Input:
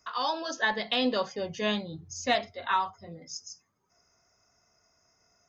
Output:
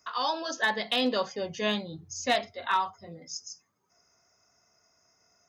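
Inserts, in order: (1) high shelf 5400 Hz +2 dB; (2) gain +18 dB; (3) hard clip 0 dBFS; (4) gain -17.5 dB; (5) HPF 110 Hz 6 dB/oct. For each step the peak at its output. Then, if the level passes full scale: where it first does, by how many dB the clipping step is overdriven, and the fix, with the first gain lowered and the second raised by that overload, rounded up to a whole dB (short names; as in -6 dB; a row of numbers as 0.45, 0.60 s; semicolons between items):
-14.5, +3.5, 0.0, -17.5, -16.0 dBFS; step 2, 3.5 dB; step 2 +14 dB, step 4 -13.5 dB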